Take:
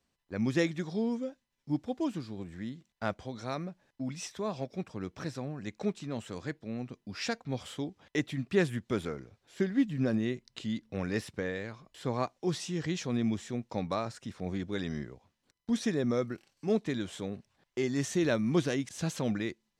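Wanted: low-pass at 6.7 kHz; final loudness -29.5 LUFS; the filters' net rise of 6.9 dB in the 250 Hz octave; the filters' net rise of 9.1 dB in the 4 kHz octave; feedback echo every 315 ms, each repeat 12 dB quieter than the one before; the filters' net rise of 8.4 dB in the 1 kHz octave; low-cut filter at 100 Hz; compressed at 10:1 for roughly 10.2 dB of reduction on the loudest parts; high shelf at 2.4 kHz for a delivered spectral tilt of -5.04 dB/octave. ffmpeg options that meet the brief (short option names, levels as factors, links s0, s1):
-af "highpass=100,lowpass=6700,equalizer=f=250:t=o:g=8,equalizer=f=1000:t=o:g=9,highshelf=f=2400:g=6.5,equalizer=f=4000:t=o:g=5.5,acompressor=threshold=0.0562:ratio=10,aecho=1:1:315|630|945:0.251|0.0628|0.0157,volume=1.41"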